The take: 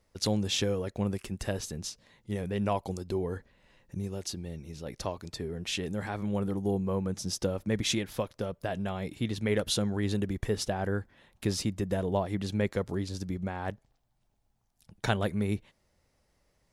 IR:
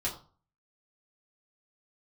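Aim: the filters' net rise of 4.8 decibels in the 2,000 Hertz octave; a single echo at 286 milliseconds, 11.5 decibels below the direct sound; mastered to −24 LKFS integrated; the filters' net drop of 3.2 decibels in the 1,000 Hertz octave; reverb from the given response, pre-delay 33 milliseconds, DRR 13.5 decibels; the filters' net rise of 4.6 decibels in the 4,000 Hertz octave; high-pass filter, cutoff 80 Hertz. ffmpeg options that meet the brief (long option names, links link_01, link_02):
-filter_complex "[0:a]highpass=80,equalizer=frequency=1000:width_type=o:gain=-6.5,equalizer=frequency=2000:width_type=o:gain=7,equalizer=frequency=4000:width_type=o:gain=4,aecho=1:1:286:0.266,asplit=2[link_01][link_02];[1:a]atrim=start_sample=2205,adelay=33[link_03];[link_02][link_03]afir=irnorm=-1:irlink=0,volume=-18dB[link_04];[link_01][link_04]amix=inputs=2:normalize=0,volume=7.5dB"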